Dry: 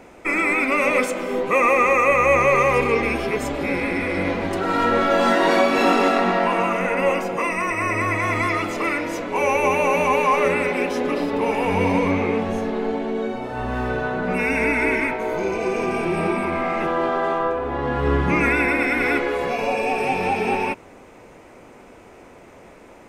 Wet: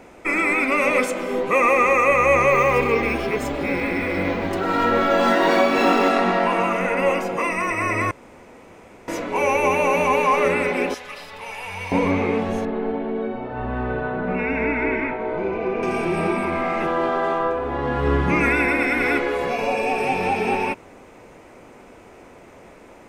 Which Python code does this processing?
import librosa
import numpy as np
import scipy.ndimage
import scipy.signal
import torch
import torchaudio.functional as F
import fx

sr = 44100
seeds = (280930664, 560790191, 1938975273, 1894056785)

y = fx.resample_linear(x, sr, factor=2, at=(2.5, 6.1))
y = fx.tone_stack(y, sr, knobs='10-0-10', at=(10.94, 11.92))
y = fx.air_absorb(y, sr, metres=370.0, at=(12.65, 15.83))
y = fx.edit(y, sr, fx.room_tone_fill(start_s=8.11, length_s=0.97), tone=tone)